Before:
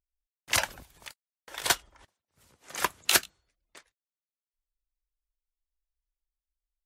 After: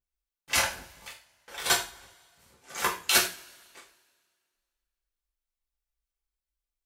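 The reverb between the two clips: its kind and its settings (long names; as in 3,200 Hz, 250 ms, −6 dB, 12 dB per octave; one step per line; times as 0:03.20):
coupled-rooms reverb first 0.35 s, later 2 s, from −27 dB, DRR −6 dB
level −5 dB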